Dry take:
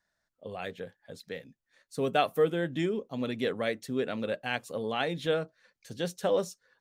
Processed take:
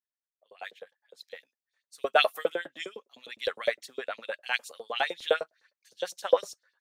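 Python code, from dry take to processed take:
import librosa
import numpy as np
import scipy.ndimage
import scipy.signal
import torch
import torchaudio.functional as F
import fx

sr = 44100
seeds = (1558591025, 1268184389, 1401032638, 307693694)

y = fx.filter_lfo_highpass(x, sr, shape='saw_up', hz=9.8, low_hz=460.0, high_hz=5700.0, q=2.2)
y = fx.band_widen(y, sr, depth_pct=70)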